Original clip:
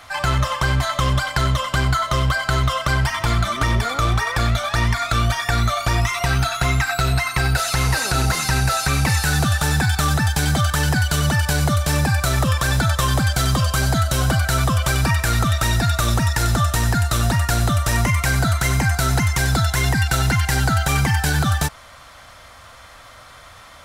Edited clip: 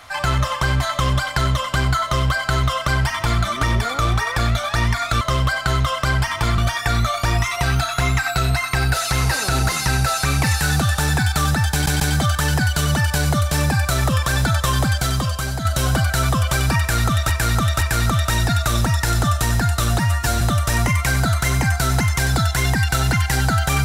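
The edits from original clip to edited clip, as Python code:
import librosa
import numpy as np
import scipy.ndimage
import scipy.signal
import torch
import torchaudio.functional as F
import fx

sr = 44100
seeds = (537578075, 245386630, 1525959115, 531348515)

y = fx.edit(x, sr, fx.duplicate(start_s=2.04, length_s=1.37, to_s=5.21),
    fx.stutter(start_s=10.35, slice_s=0.14, count=3),
    fx.fade_out_to(start_s=13.22, length_s=0.78, floor_db=-7.5),
    fx.repeat(start_s=15.14, length_s=0.51, count=3),
    fx.stretch_span(start_s=17.32, length_s=0.28, factor=1.5), tone=tone)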